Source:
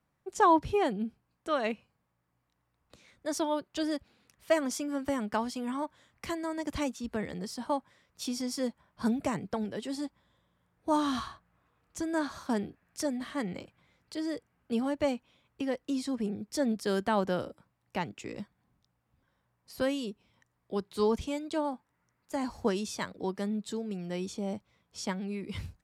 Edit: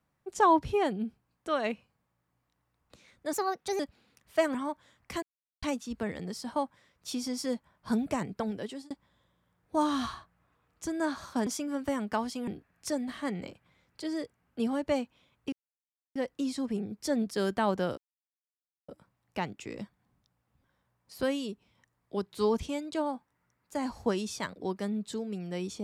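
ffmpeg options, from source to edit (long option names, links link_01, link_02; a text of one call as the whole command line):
ffmpeg -i in.wav -filter_complex "[0:a]asplit=11[link_01][link_02][link_03][link_04][link_05][link_06][link_07][link_08][link_09][link_10][link_11];[link_01]atrim=end=3.334[link_12];[link_02]atrim=start=3.33:end=3.92,asetpts=PTS-STARTPTS,asetrate=56007,aresample=44100,atrim=end_sample=20487,asetpts=PTS-STARTPTS[link_13];[link_03]atrim=start=3.916:end=4.672[link_14];[link_04]atrim=start=5.678:end=6.36,asetpts=PTS-STARTPTS,afade=type=out:start_time=0.678:duration=0.004:curve=hsin[link_15];[link_05]atrim=start=6.36:end=6.76,asetpts=PTS-STARTPTS,volume=0[link_16];[link_06]atrim=start=6.76:end=10.04,asetpts=PTS-STARTPTS,afade=type=in:duration=0.004:curve=hsin,afade=type=out:start_time=3.02:duration=0.26[link_17];[link_07]atrim=start=10.04:end=12.602,asetpts=PTS-STARTPTS,afade=type=in:duration=0.004:curve=hsin[link_18];[link_08]atrim=start=4.668:end=5.682[link_19];[link_09]atrim=start=12.598:end=15.65,asetpts=PTS-STARTPTS,afade=type=out:start_time=3.048:duration=0.004:curve=hsin,apad=pad_dur=0.63[link_20];[link_10]atrim=start=15.65:end=17.47,asetpts=PTS-STARTPTS,afade=type=in:duration=0.004:curve=hsin,afade=type=out:start_time=1.816:duration=0.004:curve=hsin,apad=pad_dur=0.91[link_21];[link_11]atrim=start=17.47,asetpts=PTS-STARTPTS,afade=type=in:duration=0.004:curve=hsin[link_22];[link_12][link_13]acrossfade=duration=0.004:curve1=hsin:curve2=hsin[link_23];[link_23][link_14]acrossfade=duration=0.004:curve1=hsin:curve2=hsin[link_24];[link_15][link_16][link_17][link_18]concat=n=4:v=0:a=1[link_25];[link_24][link_25]acrossfade=duration=0.004:curve1=hsin:curve2=hsin[link_26];[link_26][link_19]acrossfade=duration=0.004:curve1=hsin:curve2=hsin[link_27];[link_20][link_21][link_22]concat=n=3:v=0:a=1[link_28];[link_27][link_28]acrossfade=duration=0.004:curve1=hsin:curve2=hsin" out.wav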